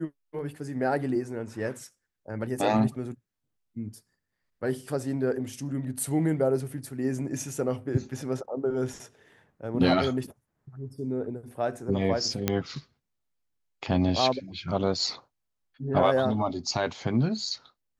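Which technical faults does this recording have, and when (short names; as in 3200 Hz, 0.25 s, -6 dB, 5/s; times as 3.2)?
12.48 pop -9 dBFS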